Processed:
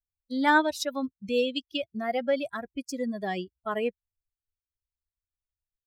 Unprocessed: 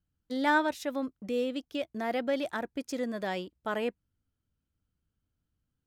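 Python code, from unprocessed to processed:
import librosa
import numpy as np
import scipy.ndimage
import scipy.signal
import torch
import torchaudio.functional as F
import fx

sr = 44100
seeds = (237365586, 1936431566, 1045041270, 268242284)

y = fx.bin_expand(x, sr, power=2.0)
y = fx.peak_eq(y, sr, hz=4000.0, db=10.5, octaves=2.3, at=(0.68, 1.76), fade=0.02)
y = F.gain(torch.from_numpy(y), 6.0).numpy()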